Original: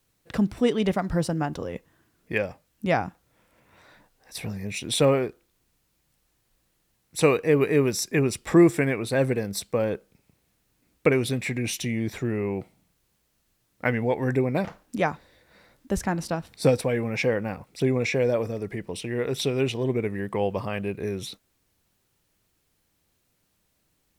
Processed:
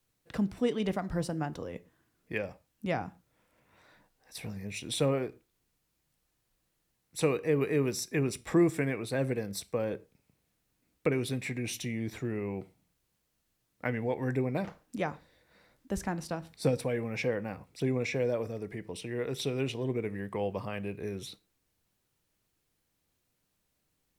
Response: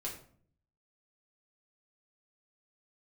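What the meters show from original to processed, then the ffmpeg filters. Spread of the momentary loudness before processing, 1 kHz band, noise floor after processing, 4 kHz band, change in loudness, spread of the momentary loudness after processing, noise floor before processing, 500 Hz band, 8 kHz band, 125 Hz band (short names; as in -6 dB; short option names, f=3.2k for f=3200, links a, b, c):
12 LU, -8.5 dB, -78 dBFS, -7.5 dB, -7.5 dB, 11 LU, -72 dBFS, -7.5 dB, -7.5 dB, -6.5 dB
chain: -filter_complex "[0:a]acrossover=split=450[a][b];[b]acompressor=threshold=-23dB:ratio=6[c];[a][c]amix=inputs=2:normalize=0,asplit=2[d][e];[1:a]atrim=start_sample=2205,atrim=end_sample=6174[f];[e][f]afir=irnorm=-1:irlink=0,volume=-13.5dB[g];[d][g]amix=inputs=2:normalize=0,volume=-8dB"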